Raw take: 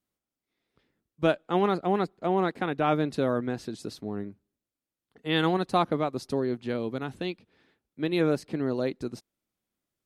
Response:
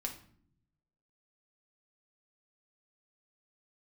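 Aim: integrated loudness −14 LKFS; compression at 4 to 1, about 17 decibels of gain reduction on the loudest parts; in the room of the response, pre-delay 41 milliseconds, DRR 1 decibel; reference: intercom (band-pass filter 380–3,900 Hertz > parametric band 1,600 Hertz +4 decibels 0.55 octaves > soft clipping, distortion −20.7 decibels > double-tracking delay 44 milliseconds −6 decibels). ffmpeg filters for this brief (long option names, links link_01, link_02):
-filter_complex "[0:a]acompressor=threshold=-40dB:ratio=4,asplit=2[link_01][link_02];[1:a]atrim=start_sample=2205,adelay=41[link_03];[link_02][link_03]afir=irnorm=-1:irlink=0,volume=-1dB[link_04];[link_01][link_04]amix=inputs=2:normalize=0,highpass=380,lowpass=3900,equalizer=frequency=1600:width_type=o:width=0.55:gain=4,asoftclip=threshold=-30dB,asplit=2[link_05][link_06];[link_06]adelay=44,volume=-6dB[link_07];[link_05][link_07]amix=inputs=2:normalize=0,volume=28.5dB"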